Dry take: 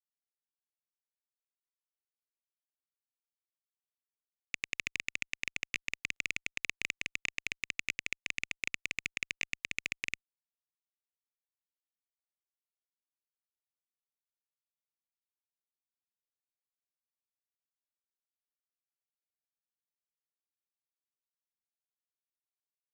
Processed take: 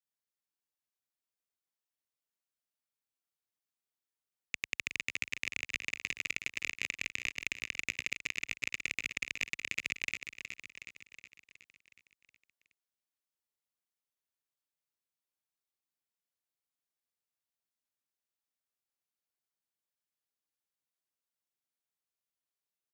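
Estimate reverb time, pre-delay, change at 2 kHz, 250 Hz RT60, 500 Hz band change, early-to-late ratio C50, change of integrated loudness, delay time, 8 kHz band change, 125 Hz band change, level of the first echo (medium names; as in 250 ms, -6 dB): no reverb, no reverb, +0.5 dB, no reverb, +1.0 dB, no reverb, +0.5 dB, 368 ms, +1.0 dB, +0.5 dB, -8.5 dB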